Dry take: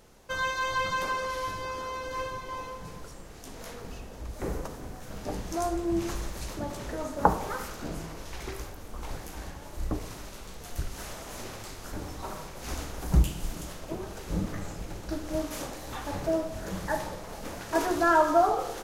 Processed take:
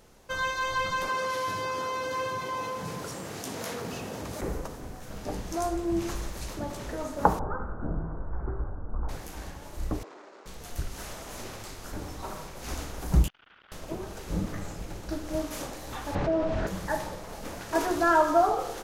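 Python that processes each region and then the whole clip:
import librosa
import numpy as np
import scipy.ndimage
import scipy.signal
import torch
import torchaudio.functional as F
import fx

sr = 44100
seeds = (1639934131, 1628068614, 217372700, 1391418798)

y = fx.chain(x, sr, fx.highpass(hz=100.0, slope=24),
    fx.env_flatten(amount_pct=50), at=(1.09, 4.41))
y = fx.chain(y, sr, fx.cheby1_lowpass(hz=1500.0, order=5),
    fx.low_shelf(hz=170.0, db=9.5), at=(7.39, 9.09))
y = fx.chain(y, sr, fx.median_filter(points=15),
    fx.cheby1_bandpass(low_hz=340.0, high_hz=6800.0, order=3), at=(10.03, 10.46))
y = fx.chain(y, sr, fx.ladder_highpass(hz=1300.0, resonance_pct=65),
    fx.resample_bad(factor=6, down='none', up='filtered'),
    fx.transformer_sat(knee_hz=1400.0), at=(13.28, 13.72))
y = fx.chain(y, sr, fx.lowpass(hz=3100.0, slope=12),
    fx.env_flatten(amount_pct=70), at=(16.15, 16.67))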